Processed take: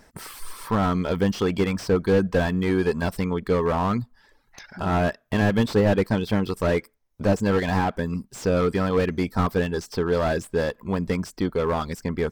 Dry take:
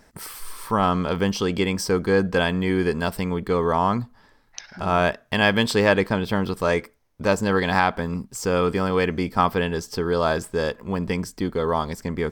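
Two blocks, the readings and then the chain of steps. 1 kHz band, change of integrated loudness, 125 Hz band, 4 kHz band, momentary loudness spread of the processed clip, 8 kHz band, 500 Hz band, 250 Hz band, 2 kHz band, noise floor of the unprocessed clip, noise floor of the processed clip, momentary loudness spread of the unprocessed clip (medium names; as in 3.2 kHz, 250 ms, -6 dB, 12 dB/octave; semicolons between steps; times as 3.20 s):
-4.5 dB, -1.0 dB, +1.5 dB, -6.5 dB, 7 LU, -5.5 dB, -0.5 dB, +0.5 dB, -5.5 dB, -57 dBFS, -63 dBFS, 9 LU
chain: reverb removal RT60 0.51 s; slew-rate limiter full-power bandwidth 76 Hz; trim +1 dB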